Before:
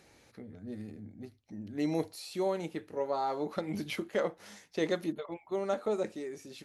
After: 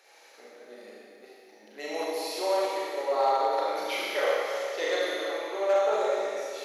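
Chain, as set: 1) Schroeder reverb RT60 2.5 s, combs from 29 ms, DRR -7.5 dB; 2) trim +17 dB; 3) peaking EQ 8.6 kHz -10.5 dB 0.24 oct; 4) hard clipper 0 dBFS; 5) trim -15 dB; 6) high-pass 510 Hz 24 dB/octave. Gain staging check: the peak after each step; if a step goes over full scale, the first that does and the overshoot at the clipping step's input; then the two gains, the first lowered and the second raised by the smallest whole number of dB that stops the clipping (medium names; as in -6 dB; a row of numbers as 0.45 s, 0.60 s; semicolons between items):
-12.5 dBFS, +4.5 dBFS, +4.5 dBFS, 0.0 dBFS, -15.0 dBFS, -15.0 dBFS; step 2, 4.5 dB; step 2 +12 dB, step 5 -10 dB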